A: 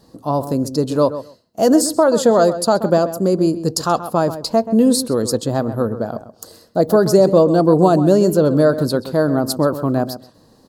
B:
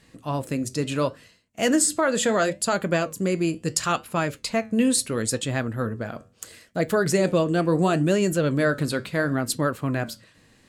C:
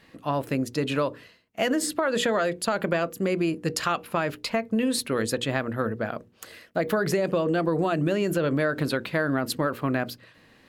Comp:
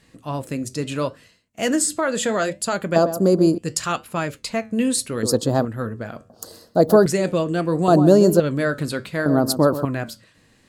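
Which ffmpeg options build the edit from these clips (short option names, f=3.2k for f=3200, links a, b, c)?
-filter_complex "[0:a]asplit=5[a][b][c][d][e];[1:a]asplit=6[f][g][h][i][j][k];[f]atrim=end=2.962[l];[a]atrim=start=2.958:end=3.582[m];[g]atrim=start=3.578:end=5.232[n];[b]atrim=start=5.228:end=5.652[o];[h]atrim=start=5.648:end=6.302[p];[c]atrim=start=6.298:end=7.062[q];[i]atrim=start=7.058:end=7.882[r];[d]atrim=start=7.878:end=8.402[s];[j]atrim=start=8.398:end=9.262[t];[e]atrim=start=9.258:end=9.852[u];[k]atrim=start=9.848[v];[l][m]acrossfade=d=0.004:c1=hsin:c2=hsin[w];[w][n]acrossfade=d=0.004:c1=hsin:c2=hsin[x];[x][o]acrossfade=d=0.004:c1=hsin:c2=hsin[y];[y][p]acrossfade=d=0.004:c1=hsin:c2=hsin[z];[z][q]acrossfade=d=0.004:c1=hsin:c2=hsin[aa];[aa][r]acrossfade=d=0.004:c1=hsin:c2=hsin[ab];[ab][s]acrossfade=d=0.004:c1=hsin:c2=hsin[ac];[ac][t]acrossfade=d=0.004:c1=hsin:c2=hsin[ad];[ad][u]acrossfade=d=0.004:c1=hsin:c2=hsin[ae];[ae][v]acrossfade=d=0.004:c1=hsin:c2=hsin"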